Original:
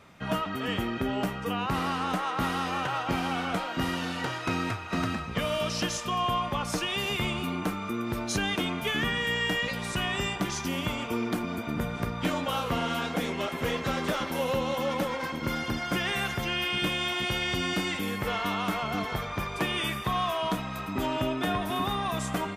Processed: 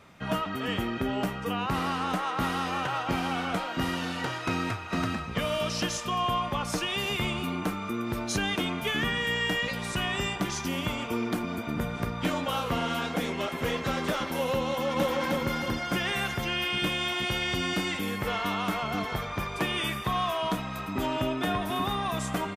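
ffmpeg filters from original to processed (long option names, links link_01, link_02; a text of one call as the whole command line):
ffmpeg -i in.wav -filter_complex "[0:a]asplit=2[link_01][link_02];[link_02]afade=type=in:start_time=14.65:duration=0.01,afade=type=out:start_time=15.12:duration=0.01,aecho=0:1:310|620|930|1240|1550:0.841395|0.336558|0.134623|0.0538493|0.0215397[link_03];[link_01][link_03]amix=inputs=2:normalize=0" out.wav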